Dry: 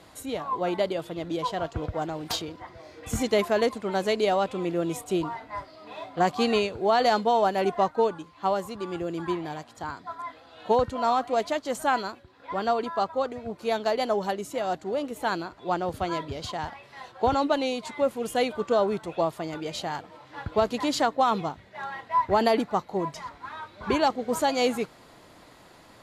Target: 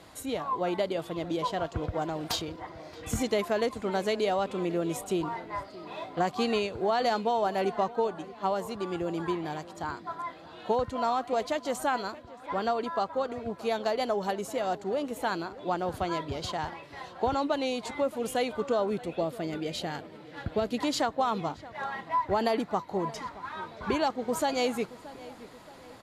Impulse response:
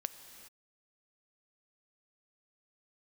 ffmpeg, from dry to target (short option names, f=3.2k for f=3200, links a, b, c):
-filter_complex "[0:a]asettb=1/sr,asplit=3[a][b][c];[a]atrim=end=18.904[d];[b]atrim=start=18.9:end=20.83,asetpts=PTS-STARTPTS,afade=t=in:d=0.004:c=qsin,afade=t=out:st=1.926:d=0.004:c=qsin,equalizer=f=250:t=o:w=0.67:g=3,equalizer=f=1k:t=o:w=0.67:g=-10,equalizer=f=6.3k:t=o:w=0.67:g=-4[e];[c]atrim=start=20.826[f];[d][e]acrossfade=d=0.004:c1=hsin:c2=qsin[g];[g][f]acrossfade=d=0.004:c1=qsin:c2=hsin,acompressor=threshold=-27dB:ratio=2,asplit=2[h][i];[i]adelay=625,lowpass=f=2.4k:p=1,volume=-17.5dB,asplit=2[j][k];[k]adelay=625,lowpass=f=2.4k:p=1,volume=0.52,asplit=2[l][m];[m]adelay=625,lowpass=f=2.4k:p=1,volume=0.52,asplit=2[n][o];[o]adelay=625,lowpass=f=2.4k:p=1,volume=0.52[p];[h][j][l][n][p]amix=inputs=5:normalize=0"